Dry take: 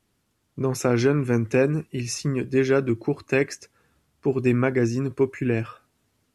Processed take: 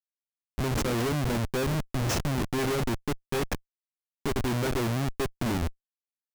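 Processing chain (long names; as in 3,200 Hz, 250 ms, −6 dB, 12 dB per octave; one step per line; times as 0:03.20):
turntable brake at the end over 0.96 s
comparator with hysteresis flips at −27.5 dBFS
level −2.5 dB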